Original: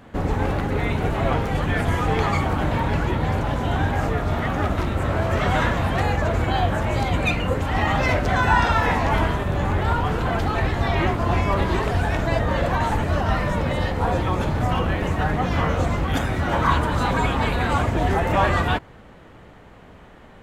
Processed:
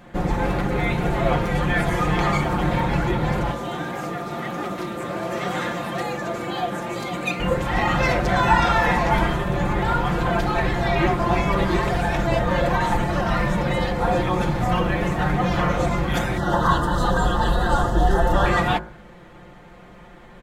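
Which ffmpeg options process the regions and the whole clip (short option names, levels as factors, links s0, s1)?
-filter_complex "[0:a]asettb=1/sr,asplit=3[s0][s1][s2];[s0]atrim=end=3.514[s3];[s1]atrim=start=3.51:end=7.4,asetpts=PTS-STARTPTS,afade=t=in:d=0.004:c=qsin,afade=t=out:st=3.886:d=0.004:c=qsin,highpass=240,equalizer=f=1300:w=0.41:g=-6.5,aeval=exprs='val(0)+0.01*sin(2*PI*1200*n/s)':c=same[s4];[s2]atrim=start=7.396[s5];[s3][s4]acrossfade=d=0.004:c1=hsin:c2=qsin[s6];[s6][s5]acrossfade=d=0.004:c1=qsin:c2=hsin,asettb=1/sr,asplit=3[s7][s8][s9];[s7]atrim=end=16.374[s10];[s8]atrim=start=16.37:end=18.46,asetpts=PTS-STARTPTS,afade=t=in:d=0.004:c=qsin,afade=t=out:st=2.086:d=0.004:c=qsin,asubboost=boost=6.5:cutoff=65,asuperstop=centerf=2300:order=4:qfactor=1.9[s11];[s9]atrim=start=18.456[s12];[s10][s11]acrossfade=d=0.004:c1=hsin:c2=qsin[s13];[s13][s12]acrossfade=d=0.004:c1=qsin:c2=hsin,bandreject=f=2900:w=19,aecho=1:1:5.7:0.74,bandreject=f=53.78:t=h:w=4,bandreject=f=107.56:t=h:w=4,bandreject=f=161.34:t=h:w=4,bandreject=f=215.12:t=h:w=4,bandreject=f=268.9:t=h:w=4,bandreject=f=322.68:t=h:w=4,bandreject=f=376.46:t=h:w=4,bandreject=f=430.24:t=h:w=4,bandreject=f=484.02:t=h:w=4,bandreject=f=537.8:t=h:w=4,bandreject=f=591.58:t=h:w=4,bandreject=f=645.36:t=h:w=4,bandreject=f=699.14:t=h:w=4,bandreject=f=752.92:t=h:w=4,bandreject=f=806.7:t=h:w=4,bandreject=f=860.48:t=h:w=4,bandreject=f=914.26:t=h:w=4,bandreject=f=968.04:t=h:w=4,bandreject=f=1021.82:t=h:w=4,bandreject=f=1075.6:t=h:w=4,bandreject=f=1129.38:t=h:w=4,bandreject=f=1183.16:t=h:w=4,bandreject=f=1236.94:t=h:w=4,bandreject=f=1290.72:t=h:w=4,bandreject=f=1344.5:t=h:w=4,bandreject=f=1398.28:t=h:w=4,bandreject=f=1452.06:t=h:w=4,bandreject=f=1505.84:t=h:w=4,bandreject=f=1559.62:t=h:w=4,bandreject=f=1613.4:t=h:w=4,bandreject=f=1667.18:t=h:w=4,bandreject=f=1720.96:t=h:w=4"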